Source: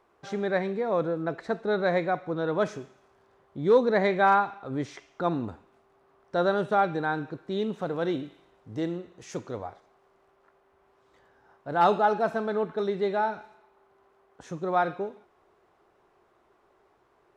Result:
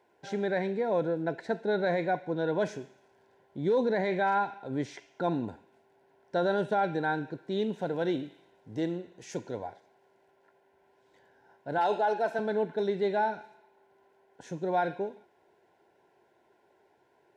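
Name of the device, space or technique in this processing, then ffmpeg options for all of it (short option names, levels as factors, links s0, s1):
PA system with an anti-feedback notch: -filter_complex "[0:a]asettb=1/sr,asplit=3[s0][s1][s2];[s0]atrim=end=11.784[s3];[s1]atrim=start=11.78:end=12.39,asetpts=PTS-STARTPTS,afade=t=in:d=0.004:c=qsin,afade=t=out:st=0.606:d=0.004:c=qsin,highpass=340[s4];[s2]atrim=start=12.386[s5];[s3][s4]acrossfade=d=0.004:c1=hsin:c2=qsin[s6];[s6][s5]acrossfade=d=0.004:c1=qsin:c2=hsin,highpass=110,asuperstop=centerf=1200:order=8:qfactor=3.8,alimiter=limit=0.126:level=0:latency=1:release=17,volume=0.891"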